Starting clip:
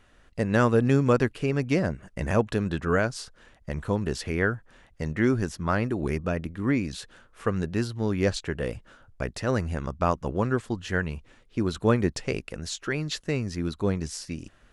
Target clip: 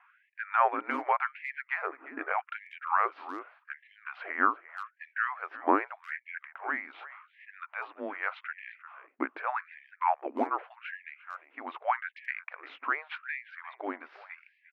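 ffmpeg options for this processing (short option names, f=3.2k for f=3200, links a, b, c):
-filter_complex "[0:a]highpass=f=210:t=q:w=0.5412,highpass=f=210:t=q:w=1.307,lowpass=f=2.6k:t=q:w=0.5176,lowpass=f=2.6k:t=q:w=0.7071,lowpass=f=2.6k:t=q:w=1.932,afreqshift=-300,asplit=2[a][b];[b]adelay=350,highpass=300,lowpass=3.4k,asoftclip=type=hard:threshold=-18dB,volume=-15dB[c];[a][c]amix=inputs=2:normalize=0,afftfilt=real='re*gte(b*sr/1024,220*pow(1700/220,0.5+0.5*sin(2*PI*0.84*pts/sr)))':imag='im*gte(b*sr/1024,220*pow(1700/220,0.5+0.5*sin(2*PI*0.84*pts/sr)))':win_size=1024:overlap=0.75,volume=3.5dB"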